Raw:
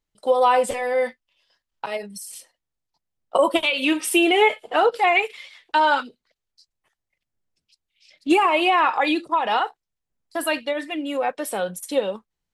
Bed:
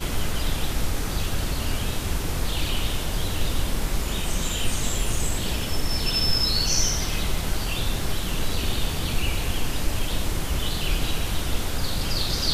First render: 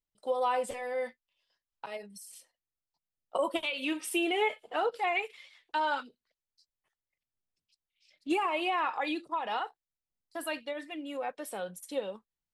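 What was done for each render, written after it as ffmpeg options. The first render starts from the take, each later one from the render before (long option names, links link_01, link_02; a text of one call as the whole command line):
ffmpeg -i in.wav -af "volume=-12dB" out.wav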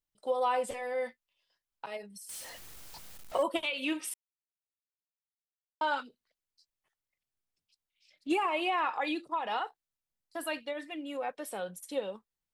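ffmpeg -i in.wav -filter_complex "[0:a]asettb=1/sr,asplit=3[link_01][link_02][link_03];[link_01]atrim=end=2.294[link_04];[link_02]atrim=start=2.29:end=3.43,asetpts=PTS-STARTPTS,afade=type=in:duration=0.004:curve=qsin,afade=type=out:start_time=1.136:duration=0.004:curve=qsin,aeval=exprs='val(0)+0.5*0.01*sgn(val(0))':channel_layout=same[link_05];[link_03]atrim=start=3.426[link_06];[link_04][link_05]acrossfade=duration=0.004:curve1=hsin:curve2=qsin[link_07];[link_07][link_06]acrossfade=duration=0.004:curve1=qsin:curve2=hsin,asplit=3[link_08][link_09][link_10];[link_08]atrim=end=4.14,asetpts=PTS-STARTPTS,afade=type=out:start_time=4.136:duration=0.004:curve=hsin[link_11];[link_09]atrim=start=4.14:end=5.81,asetpts=PTS-STARTPTS,volume=0[link_12];[link_10]atrim=start=5.81,asetpts=PTS-STARTPTS,afade=type=in:duration=0.004:curve=hsin[link_13];[link_11][link_12][link_13]concat=n=3:v=0:a=1" out.wav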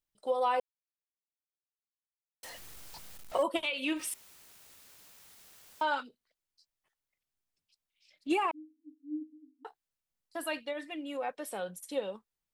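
ffmpeg -i in.wav -filter_complex "[0:a]asettb=1/sr,asplit=3[link_01][link_02][link_03];[link_01]atrim=end=3.964[link_04];[link_02]atrim=start=3.96:end=5.83,asetpts=PTS-STARTPTS,afade=type=in:duration=0.004:curve=qsin,afade=type=out:start_time=1.866:duration=0.004:curve=qsin,aeval=exprs='val(0)+0.5*0.00531*sgn(val(0))':channel_layout=same[link_05];[link_03]atrim=start=5.826[link_06];[link_04][link_05]acrossfade=duration=0.004:curve1=hsin:curve2=qsin[link_07];[link_07][link_06]acrossfade=duration=0.004:curve1=qsin:curve2=hsin,asettb=1/sr,asplit=3[link_08][link_09][link_10];[link_08]atrim=end=8.514[link_11];[link_09]atrim=start=8.51:end=9.65,asetpts=PTS-STARTPTS,afade=type=in:duration=0.004:curve=qsin,afade=type=out:start_time=1.136:duration=0.004:curve=qsin,asuperpass=centerf=280:order=20:qfactor=4.6[link_12];[link_10]atrim=start=9.646[link_13];[link_11][link_12]acrossfade=duration=0.004:curve1=hsin:curve2=qsin[link_14];[link_14][link_13]acrossfade=duration=0.004:curve1=qsin:curve2=hsin,asplit=3[link_15][link_16][link_17];[link_15]atrim=end=0.6,asetpts=PTS-STARTPTS,afade=type=out:start_time=0.596:duration=0.004:curve=hsin[link_18];[link_16]atrim=start=0.6:end=2.43,asetpts=PTS-STARTPTS,volume=0[link_19];[link_17]atrim=start=2.43,asetpts=PTS-STARTPTS,afade=type=in:duration=0.004:curve=hsin[link_20];[link_18][link_19][link_20]concat=n=3:v=0:a=1" out.wav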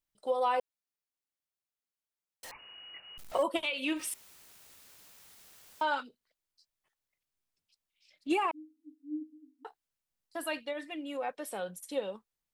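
ffmpeg -i in.wav -filter_complex "[0:a]asettb=1/sr,asplit=3[link_01][link_02][link_03];[link_01]atrim=end=2.514[link_04];[link_02]atrim=start=2.51:end=3.18,asetpts=PTS-STARTPTS,afade=type=in:duration=0.004:curve=qsin,afade=type=out:start_time=0.666:duration=0.004:curve=qsin,lowpass=frequency=2500:width_type=q:width=0.5098,lowpass=frequency=2500:width_type=q:width=0.6013,lowpass=frequency=2500:width_type=q:width=0.9,lowpass=frequency=2500:width_type=q:width=2.563,afreqshift=-2900[link_05];[link_03]atrim=start=3.176[link_06];[link_04][link_05]acrossfade=duration=0.004:curve1=hsin:curve2=qsin[link_07];[link_07][link_06]acrossfade=duration=0.004:curve1=qsin:curve2=hsin" out.wav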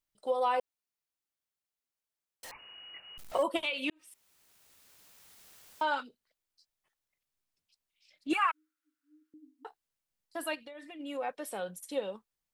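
ffmpeg -i in.wav -filter_complex "[0:a]asettb=1/sr,asplit=3[link_01][link_02][link_03];[link_01]atrim=end=8.334[link_04];[link_02]atrim=start=8.33:end=9.34,asetpts=PTS-STARTPTS,afade=type=in:duration=0.004:curve=qsin,afade=type=out:start_time=1.006:duration=0.004:curve=qsin,highpass=frequency=1400:width_type=q:width=6.1[link_05];[link_03]atrim=start=9.336[link_06];[link_04][link_05]acrossfade=duration=0.004:curve1=hsin:curve2=qsin[link_07];[link_07][link_06]acrossfade=duration=0.004:curve1=qsin:curve2=hsin,asplit=3[link_08][link_09][link_10];[link_08]afade=type=out:start_time=10.54:duration=0.02[link_11];[link_09]acompressor=threshold=-44dB:ratio=8:attack=3.2:release=140:knee=1:detection=peak,afade=type=in:start_time=10.54:duration=0.02,afade=type=out:start_time=10.99:duration=0.02[link_12];[link_10]afade=type=in:start_time=10.99:duration=0.02[link_13];[link_11][link_12][link_13]amix=inputs=3:normalize=0,asplit=2[link_14][link_15];[link_14]atrim=end=3.9,asetpts=PTS-STARTPTS,afade=type=out:start_time=3.896:duration=0.004:curve=hsin[link_16];[link_15]atrim=start=3.9,asetpts=PTS-STARTPTS,afade=type=in:duration=1.63[link_17];[link_16][link_17]concat=n=2:v=0:a=1" out.wav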